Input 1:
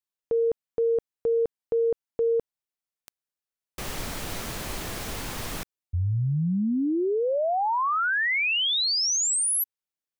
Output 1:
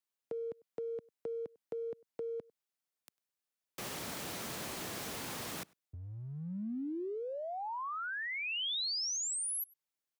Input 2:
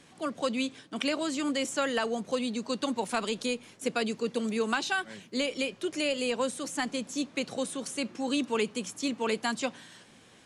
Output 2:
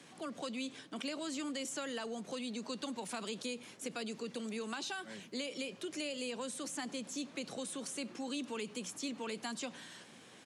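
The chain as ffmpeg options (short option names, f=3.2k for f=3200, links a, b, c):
-filter_complex "[0:a]acompressor=threshold=-44dB:ratio=1.5:attack=0.11:release=26:detection=rms,highpass=140,asplit=2[a][b];[b]adelay=99.13,volume=-27dB,highshelf=f=4k:g=-2.23[c];[a][c]amix=inputs=2:normalize=0,acrossover=split=260|1400|3000[d][e][f][g];[d]acompressor=threshold=-45dB:ratio=4[h];[e]acompressor=threshold=-42dB:ratio=4[i];[f]acompressor=threshold=-50dB:ratio=4[j];[g]acompressor=threshold=-36dB:ratio=4[k];[h][i][j][k]amix=inputs=4:normalize=0"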